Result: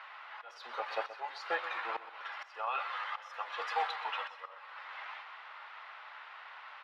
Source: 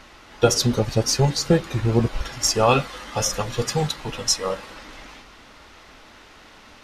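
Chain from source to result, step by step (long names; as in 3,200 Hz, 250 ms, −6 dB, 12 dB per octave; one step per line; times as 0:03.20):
high-pass filter 900 Hz 24 dB per octave
high-shelf EQ 2,500 Hz −5 dB
brickwall limiter −22 dBFS, peak gain reduction 11.5 dB
volume swells 570 ms
high-frequency loss of the air 420 metres
on a send: repeating echo 126 ms, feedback 38%, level −13.5 dB
on the sum: level +5.5 dB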